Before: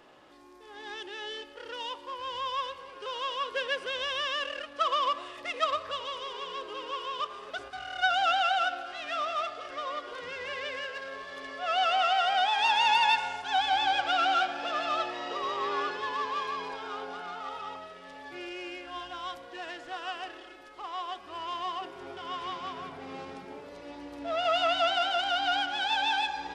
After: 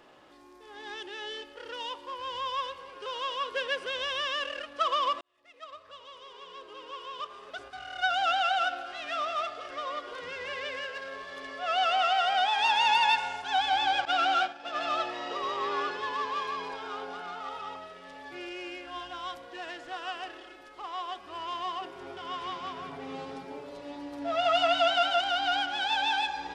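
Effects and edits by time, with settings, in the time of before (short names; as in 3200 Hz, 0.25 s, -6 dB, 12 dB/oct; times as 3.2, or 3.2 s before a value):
5.21–8.65 fade in
14.05–14.81 expander -29 dBFS
22.88–25.21 comb 7.2 ms, depth 57%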